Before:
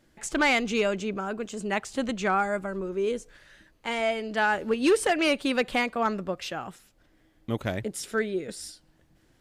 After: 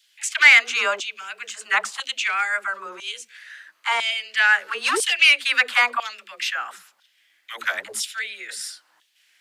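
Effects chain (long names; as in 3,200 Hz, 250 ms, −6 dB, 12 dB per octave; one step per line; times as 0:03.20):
all-pass dispersion lows, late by 140 ms, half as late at 310 Hz
auto-filter high-pass saw down 1 Hz 980–3,400 Hz
level +7.5 dB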